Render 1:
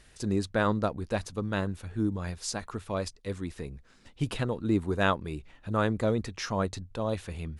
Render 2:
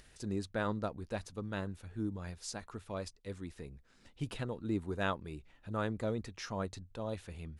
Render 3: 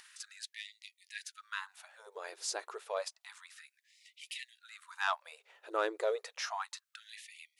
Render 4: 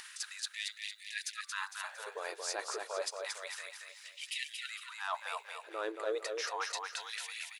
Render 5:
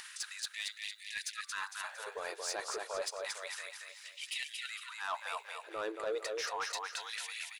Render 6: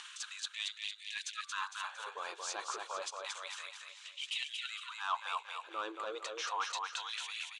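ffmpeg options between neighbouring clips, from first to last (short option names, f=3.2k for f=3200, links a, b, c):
-af "bandreject=f=1.1k:w=26,acompressor=mode=upward:threshold=-45dB:ratio=2.5,volume=-8.5dB"
-af "asoftclip=type=tanh:threshold=-24.5dB,afftfilt=real='re*gte(b*sr/1024,330*pow(1900/330,0.5+0.5*sin(2*PI*0.3*pts/sr)))':imag='im*gte(b*sr/1024,330*pow(1900/330,0.5+0.5*sin(2*PI*0.3*pts/sr)))':win_size=1024:overlap=0.75,volume=6dB"
-af "areverse,acompressor=threshold=-44dB:ratio=6,areverse,aecho=1:1:228|456|684|912|1140:0.596|0.256|0.11|0.0474|0.0204,volume=8.5dB"
-af "asoftclip=type=tanh:threshold=-29dB,volume=1dB"
-af "highpass=310,equalizer=f=440:t=q:w=4:g=-9,equalizer=f=630:t=q:w=4:g=-9,equalizer=f=1.1k:t=q:w=4:g=5,equalizer=f=1.9k:t=q:w=4:g=-9,equalizer=f=3.2k:t=q:w=4:g=5,equalizer=f=5k:t=q:w=4:g=-8,lowpass=f=7.5k:w=0.5412,lowpass=f=7.5k:w=1.3066,volume=1.5dB"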